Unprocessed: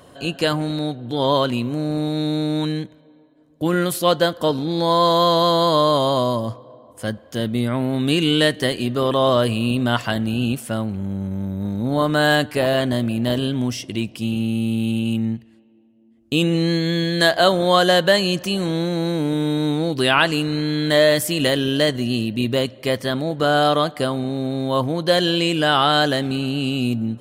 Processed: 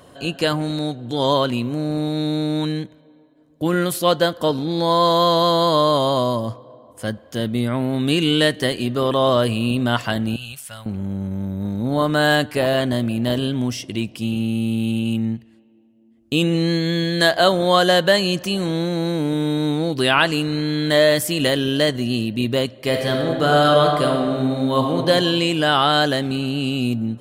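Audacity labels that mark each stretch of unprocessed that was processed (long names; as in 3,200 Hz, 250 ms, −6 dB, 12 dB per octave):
0.630000	1.330000	parametric band 7,000 Hz +4.5 dB → +12 dB
10.360000	10.860000	guitar amp tone stack bass-middle-treble 10-0-10
22.790000	24.970000	thrown reverb, RT60 1.9 s, DRR 1.5 dB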